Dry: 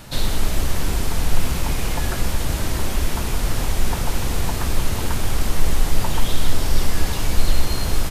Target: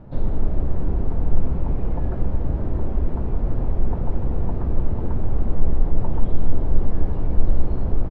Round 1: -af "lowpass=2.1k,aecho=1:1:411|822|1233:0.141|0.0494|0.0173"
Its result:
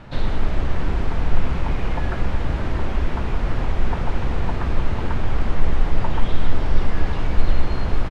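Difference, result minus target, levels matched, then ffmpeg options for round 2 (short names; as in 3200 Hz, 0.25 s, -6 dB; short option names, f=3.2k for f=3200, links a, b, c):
2000 Hz band +16.5 dB
-af "lowpass=590,aecho=1:1:411|822|1233:0.141|0.0494|0.0173"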